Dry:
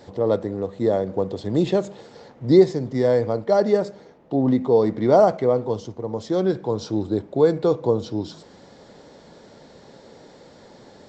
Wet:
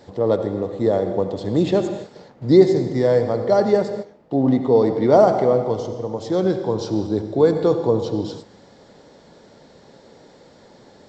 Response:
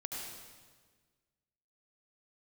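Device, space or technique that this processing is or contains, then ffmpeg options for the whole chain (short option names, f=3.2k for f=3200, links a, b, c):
keyed gated reverb: -filter_complex "[0:a]asplit=3[a][b][c];[1:a]atrim=start_sample=2205[d];[b][d]afir=irnorm=-1:irlink=0[e];[c]apad=whole_len=488829[f];[e][f]sidechaingate=range=-19dB:threshold=-41dB:ratio=16:detection=peak,volume=-3.5dB[g];[a][g]amix=inputs=2:normalize=0,volume=-1.5dB"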